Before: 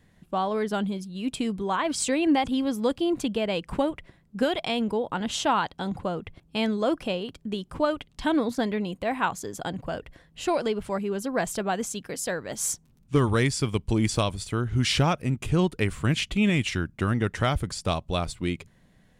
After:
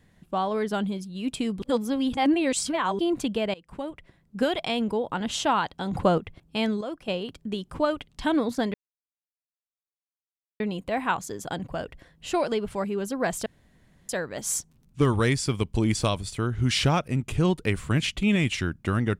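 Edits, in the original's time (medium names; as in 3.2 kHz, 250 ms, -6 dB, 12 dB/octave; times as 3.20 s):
1.62–2.99 s: reverse
3.54–4.44 s: fade in, from -23.5 dB
5.93–6.18 s: gain +8.5 dB
6.81–7.08 s: gain -9.5 dB
8.74 s: insert silence 1.86 s
11.60–12.23 s: room tone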